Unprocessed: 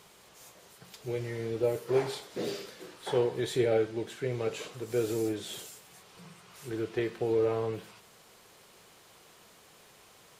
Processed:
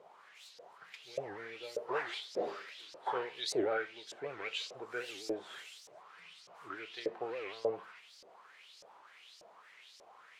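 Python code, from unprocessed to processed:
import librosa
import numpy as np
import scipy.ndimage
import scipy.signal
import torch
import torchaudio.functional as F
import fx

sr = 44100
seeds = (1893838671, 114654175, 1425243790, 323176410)

y = fx.filter_lfo_bandpass(x, sr, shape='saw_up', hz=1.7, low_hz=530.0, high_hz=5600.0, q=4.2)
y = fx.record_warp(y, sr, rpm=78.0, depth_cents=250.0)
y = y * librosa.db_to_amplitude(9.5)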